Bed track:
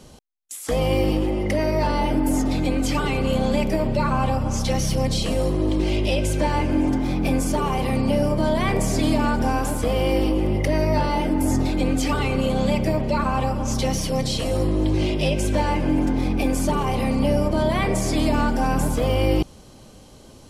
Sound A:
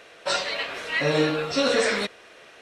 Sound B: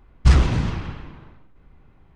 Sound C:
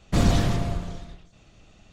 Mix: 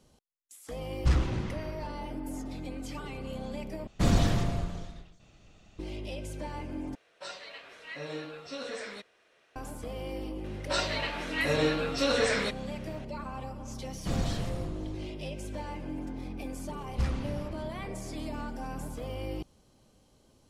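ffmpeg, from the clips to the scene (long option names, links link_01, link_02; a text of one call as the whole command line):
ffmpeg -i bed.wav -i cue0.wav -i cue1.wav -i cue2.wav -filter_complex "[2:a]asplit=2[link_01][link_02];[3:a]asplit=2[link_03][link_04];[1:a]asplit=2[link_05][link_06];[0:a]volume=-17dB,asplit=3[link_07][link_08][link_09];[link_07]atrim=end=3.874[link_10];[link_03]atrim=end=1.92,asetpts=PTS-STARTPTS,volume=-4dB[link_11];[link_08]atrim=start=5.786:end=6.954[link_12];[link_05]atrim=end=2.61,asetpts=PTS-STARTPTS,volume=-17dB[link_13];[link_09]atrim=start=9.556[link_14];[link_01]atrim=end=2.15,asetpts=PTS-STARTPTS,volume=-11dB,afade=type=in:duration=0.004:curve=hsin,afade=type=out:start_time=2.146:duration=0.004:curve=hsin,adelay=800[link_15];[link_06]atrim=end=2.61,asetpts=PTS-STARTPTS,volume=-5dB,afade=type=in:duration=0.004:curve=hsin,afade=type=out:start_time=2.606:duration=0.004:curve=hsin,adelay=10440[link_16];[link_04]atrim=end=1.92,asetpts=PTS-STARTPTS,volume=-11dB,afade=type=in:duration=0.004:curve=hsin,afade=type=out:start_time=1.916:duration=0.004:curve=hsin,adelay=13930[link_17];[link_02]atrim=end=2.15,asetpts=PTS-STARTPTS,volume=-16.5dB,afade=type=in:duration=0.004:curve=hsin,afade=type=out:start_time=2.146:duration=0.004:curve=hsin,adelay=16730[link_18];[link_10][link_11]acrossfade=duration=0.004:curve1=hsin:curve2=hsin[link_19];[link_19][link_12]acrossfade=duration=0.004:curve1=hsin:curve2=hsin[link_20];[link_20][link_13]acrossfade=duration=0.004:curve1=hsin:curve2=hsin[link_21];[link_21][link_14]acrossfade=duration=0.004:curve1=hsin:curve2=hsin[link_22];[link_22][link_15][link_16][link_17][link_18]amix=inputs=5:normalize=0" out.wav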